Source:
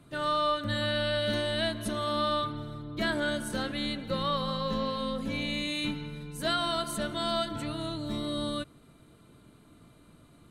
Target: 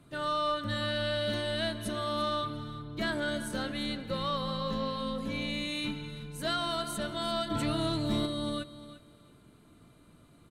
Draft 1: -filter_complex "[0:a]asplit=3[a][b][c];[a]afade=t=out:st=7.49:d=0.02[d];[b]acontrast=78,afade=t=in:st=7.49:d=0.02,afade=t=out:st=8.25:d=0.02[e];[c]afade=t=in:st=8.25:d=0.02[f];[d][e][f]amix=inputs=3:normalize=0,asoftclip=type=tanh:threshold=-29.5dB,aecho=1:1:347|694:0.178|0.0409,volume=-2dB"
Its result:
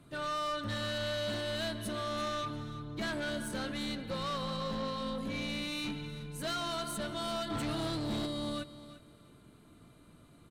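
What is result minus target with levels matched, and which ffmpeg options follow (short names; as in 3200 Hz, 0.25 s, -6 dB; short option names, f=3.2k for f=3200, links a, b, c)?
soft clip: distortion +15 dB
-filter_complex "[0:a]asplit=3[a][b][c];[a]afade=t=out:st=7.49:d=0.02[d];[b]acontrast=78,afade=t=in:st=7.49:d=0.02,afade=t=out:st=8.25:d=0.02[e];[c]afade=t=in:st=8.25:d=0.02[f];[d][e][f]amix=inputs=3:normalize=0,asoftclip=type=tanh:threshold=-18dB,aecho=1:1:347|694:0.178|0.0409,volume=-2dB"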